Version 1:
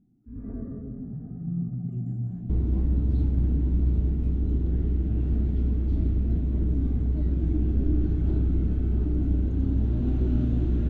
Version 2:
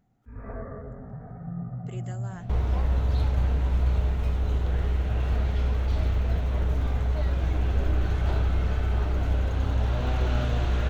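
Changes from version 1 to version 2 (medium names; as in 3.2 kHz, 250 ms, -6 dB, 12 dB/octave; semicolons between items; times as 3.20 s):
speech +10.5 dB; master: remove FFT filter 100 Hz 0 dB, 200 Hz +7 dB, 310 Hz +11 dB, 500 Hz -11 dB, 980 Hz -18 dB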